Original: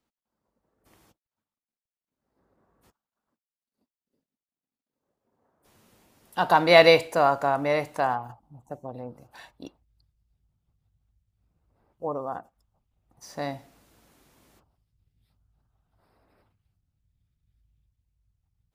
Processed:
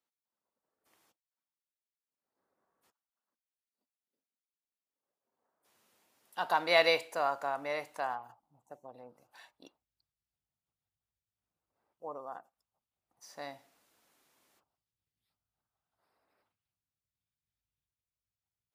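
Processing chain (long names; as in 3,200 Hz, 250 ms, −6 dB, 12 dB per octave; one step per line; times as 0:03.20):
high-pass filter 750 Hz 6 dB per octave
level −7.5 dB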